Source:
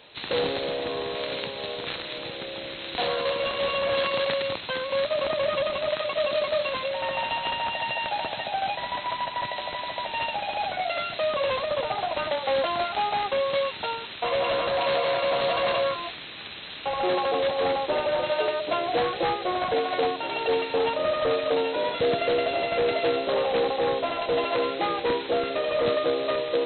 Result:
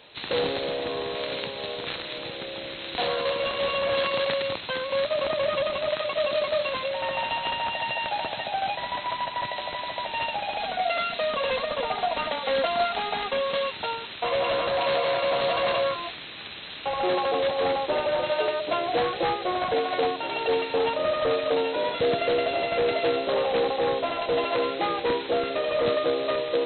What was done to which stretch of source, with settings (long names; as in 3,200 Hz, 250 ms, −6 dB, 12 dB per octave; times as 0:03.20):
0:10.56–0:13.70: comb filter 4.3 ms, depth 57%